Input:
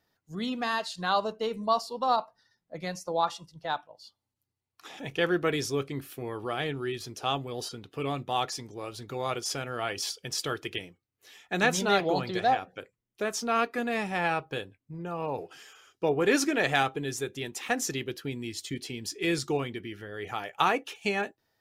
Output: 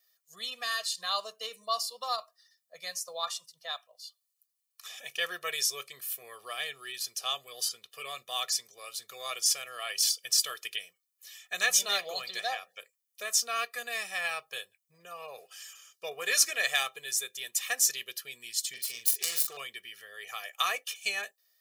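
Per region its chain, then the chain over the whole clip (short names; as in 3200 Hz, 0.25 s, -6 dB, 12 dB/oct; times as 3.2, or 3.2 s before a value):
18.73–19.57 self-modulated delay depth 0.22 ms + doubler 42 ms -7.5 dB + compressor 4:1, threshold -28 dBFS
whole clip: HPF 180 Hz 6 dB/oct; differentiator; comb 1.7 ms, depth 95%; gain +6.5 dB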